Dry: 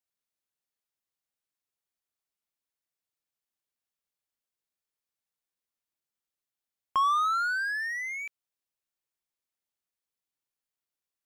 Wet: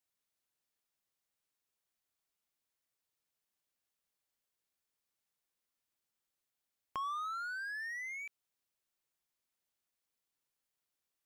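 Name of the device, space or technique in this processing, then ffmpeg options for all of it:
de-esser from a sidechain: -filter_complex "[0:a]asplit=2[a][b];[b]highpass=f=4k:w=0.5412,highpass=f=4k:w=1.3066,apad=whole_len=496364[c];[a][c]sidechaincompress=threshold=-59dB:ratio=16:attack=0.97:release=33,volume=2dB"

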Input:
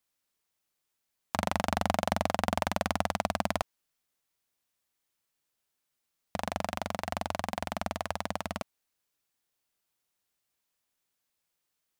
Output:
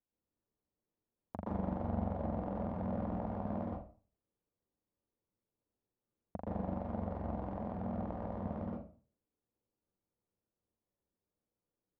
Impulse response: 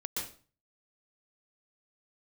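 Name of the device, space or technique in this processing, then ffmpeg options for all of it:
television next door: -filter_complex "[0:a]acompressor=threshold=-32dB:ratio=3,lowpass=540[a];[1:a]atrim=start_sample=2205[b];[a][b]afir=irnorm=-1:irlink=0,volume=1dB"

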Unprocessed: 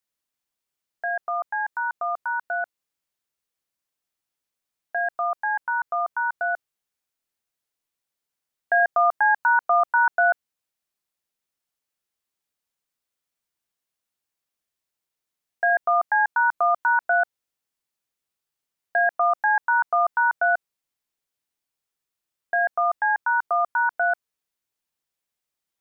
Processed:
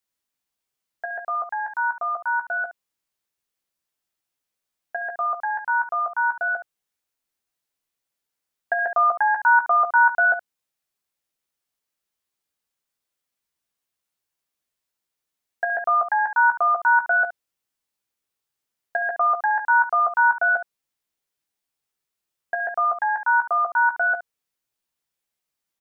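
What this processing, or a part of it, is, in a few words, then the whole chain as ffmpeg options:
slapback doubling: -filter_complex "[0:a]asplit=3[a][b][c];[b]adelay=15,volume=-5.5dB[d];[c]adelay=71,volume=-11dB[e];[a][d][e]amix=inputs=3:normalize=0"

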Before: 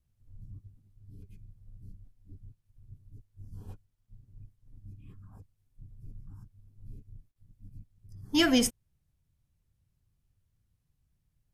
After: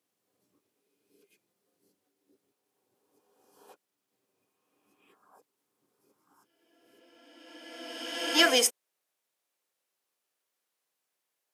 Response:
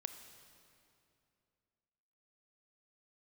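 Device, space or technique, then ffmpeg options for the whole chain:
ghost voice: -filter_complex "[0:a]areverse[a];[1:a]atrim=start_sample=2205[b];[a][b]afir=irnorm=-1:irlink=0,areverse,highpass=f=430:w=0.5412,highpass=f=430:w=1.3066,volume=8.5dB"

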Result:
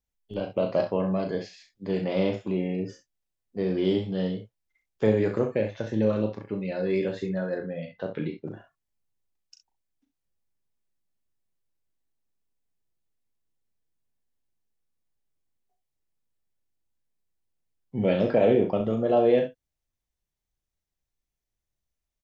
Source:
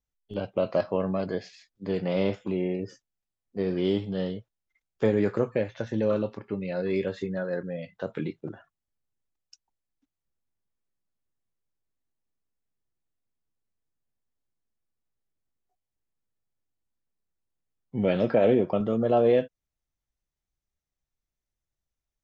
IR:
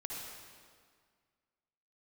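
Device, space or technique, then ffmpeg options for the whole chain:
slapback doubling: -filter_complex "[0:a]asplit=3[a][b][c];[b]adelay=37,volume=-7dB[d];[c]adelay=65,volume=-10.5dB[e];[a][d][e]amix=inputs=3:normalize=0,asettb=1/sr,asplit=3[f][g][h];[f]atrim=end=7.584[i];[g]atrim=start=7.58:end=8.46,asetpts=PTS-STARTPTS,afade=t=in:d=0.004:c=qsin,afade=t=out:st=0.876:d=0.004:c=qsin,lowpass=f=5k:w=0.5412,lowpass=f=5k:w=1.3066[j];[h]atrim=start=8.456[k];[i][j]acrossfade=d=0.004:c1=hsin:c2=qsin[l];[l][k]acrossfade=d=0.004:c1=qsin:c2=hsin,equalizer=f=1.3k:w=3.1:g=-3.5"

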